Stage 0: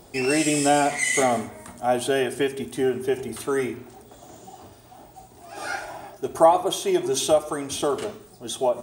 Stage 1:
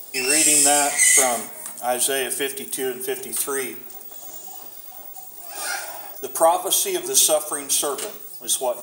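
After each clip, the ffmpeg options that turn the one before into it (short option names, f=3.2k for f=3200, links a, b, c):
-af "highpass=99,aemphasis=mode=production:type=riaa"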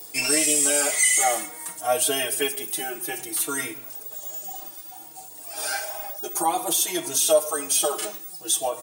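-filter_complex "[0:a]alimiter=limit=-10.5dB:level=0:latency=1:release=20,aecho=1:1:6.4:0.96,asplit=2[a][b];[b]adelay=3.8,afreqshift=-0.58[c];[a][c]amix=inputs=2:normalize=1"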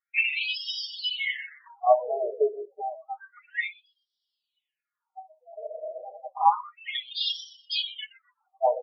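-filter_complex "[0:a]afftdn=nr=33:nf=-31,asplit=4[a][b][c][d];[b]adelay=123,afreqshift=-130,volume=-14.5dB[e];[c]adelay=246,afreqshift=-260,volume=-24.7dB[f];[d]adelay=369,afreqshift=-390,volume=-34.8dB[g];[a][e][f][g]amix=inputs=4:normalize=0,afftfilt=real='re*between(b*sr/1024,490*pow(4100/490,0.5+0.5*sin(2*PI*0.3*pts/sr))/1.41,490*pow(4100/490,0.5+0.5*sin(2*PI*0.3*pts/sr))*1.41)':imag='im*between(b*sr/1024,490*pow(4100/490,0.5+0.5*sin(2*PI*0.3*pts/sr))/1.41,490*pow(4100/490,0.5+0.5*sin(2*PI*0.3*pts/sr))*1.41)':win_size=1024:overlap=0.75,volume=4.5dB"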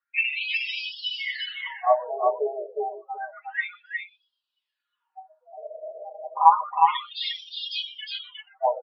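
-af "highpass=f=350:w=0.5412,highpass=f=350:w=1.3066,equalizer=f=460:t=q:w=4:g=-8,equalizer=f=700:t=q:w=4:g=-6,equalizer=f=1k:t=q:w=4:g=7,equalizer=f=1.5k:t=q:w=4:g=6,equalizer=f=2.2k:t=q:w=4:g=-6,equalizer=f=3.3k:t=q:w=4:g=-4,lowpass=f=3.9k:w=0.5412,lowpass=f=3.9k:w=1.3066,aecho=1:1:361:0.668,volume=3dB" -ar 22050 -c:a aac -b:a 96k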